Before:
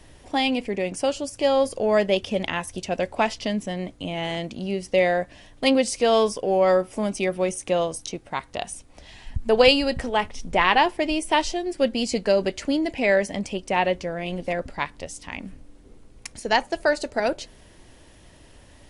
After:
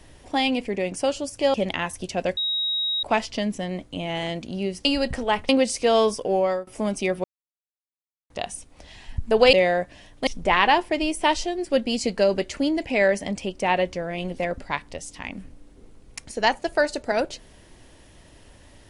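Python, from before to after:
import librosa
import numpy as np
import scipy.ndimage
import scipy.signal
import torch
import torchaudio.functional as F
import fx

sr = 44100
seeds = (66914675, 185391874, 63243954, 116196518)

y = fx.edit(x, sr, fx.cut(start_s=1.54, length_s=0.74),
    fx.insert_tone(at_s=3.11, length_s=0.66, hz=3800.0, db=-22.0),
    fx.swap(start_s=4.93, length_s=0.74, other_s=9.71, other_length_s=0.64),
    fx.fade_out_to(start_s=6.52, length_s=0.33, floor_db=-22.5),
    fx.silence(start_s=7.42, length_s=1.06), tone=tone)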